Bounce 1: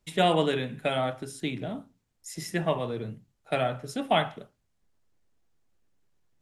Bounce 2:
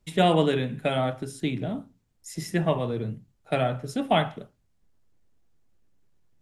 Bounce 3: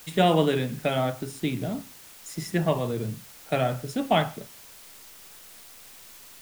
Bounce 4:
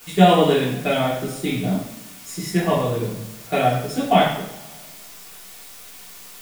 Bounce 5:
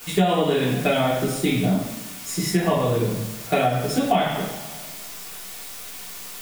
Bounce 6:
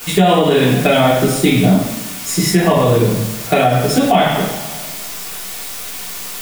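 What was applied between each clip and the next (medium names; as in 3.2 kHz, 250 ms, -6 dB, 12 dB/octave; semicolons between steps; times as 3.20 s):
bass shelf 380 Hz +6.5 dB
word length cut 8-bit, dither triangular
two-slope reverb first 0.59 s, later 1.8 s, DRR -8 dB; trim -2 dB
compression 6:1, threshold -21 dBFS, peak gain reduction 13.5 dB; trim +4.5 dB
loudness maximiser +10.5 dB; trim -1 dB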